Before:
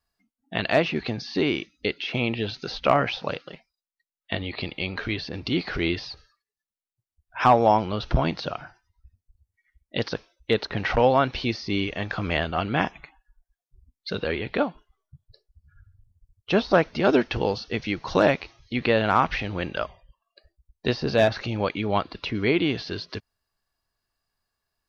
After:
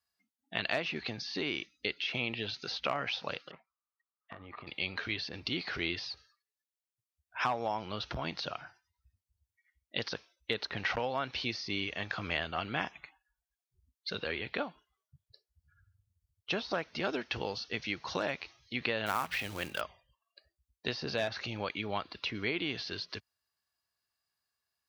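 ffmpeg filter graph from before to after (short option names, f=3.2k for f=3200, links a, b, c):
-filter_complex "[0:a]asettb=1/sr,asplit=3[a][b][c];[a]atrim=end=3.514[d];[b]atrim=start=3.51:end=4.67,asetpts=PTS-STARTPTS,afade=t=in:d=0.004:c=qsin,afade=t=out:st=1.156:d=0.004:c=qsin,lowpass=f=1.2k:t=q:w=8,acompressor=threshold=-33dB:ratio=12:attack=3.2:release=140:knee=1:detection=peak[e];[c]atrim=start=4.666[f];[d][e]acrossfade=d=0.004:c1=hsin:c2=qsin[g];[g][f]acrossfade=d=0.004:c1=qsin:c2=hsin,asettb=1/sr,asplit=3[h][i][j];[h]atrim=end=19.064[k];[i]atrim=start=19.06:end=19.81,asetpts=PTS-STARTPTS,afade=t=in:d=0.004:c=qsin,afade=t=out:st=0.746:d=0.004:c=qsin,bandreject=f=60:t=h:w=6,bandreject=f=120:t=h:w=6,bandreject=f=180:t=h:w=6,acrusher=bits=4:mode=log:mix=0:aa=0.000001[l];[j]atrim=start=19.806[m];[k][l]acrossfade=d=0.004:c1=hsin:c2=qsin[n];[n][m]acrossfade=d=0.004:c1=qsin:c2=hsin,acompressor=threshold=-21dB:ratio=4,highpass=f=57:w=0.5412,highpass=f=57:w=1.3066,tiltshelf=f=970:g=-5,volume=-7.5dB"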